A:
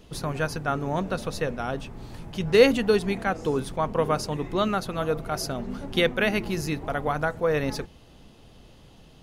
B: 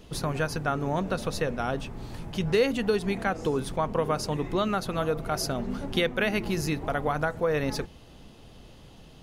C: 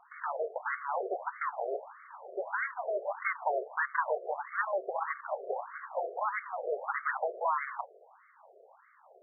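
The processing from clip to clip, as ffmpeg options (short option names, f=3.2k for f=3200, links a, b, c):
-af "acompressor=threshold=-25dB:ratio=2.5,volume=1.5dB"
-af "aeval=exprs='abs(val(0))':c=same,afftfilt=real='re*between(b*sr/1024,500*pow(1600/500,0.5+0.5*sin(2*PI*1.6*pts/sr))/1.41,500*pow(1600/500,0.5+0.5*sin(2*PI*1.6*pts/sr))*1.41)':imag='im*between(b*sr/1024,500*pow(1600/500,0.5+0.5*sin(2*PI*1.6*pts/sr))/1.41,500*pow(1600/500,0.5+0.5*sin(2*PI*1.6*pts/sr))*1.41)':win_size=1024:overlap=0.75,volume=5dB"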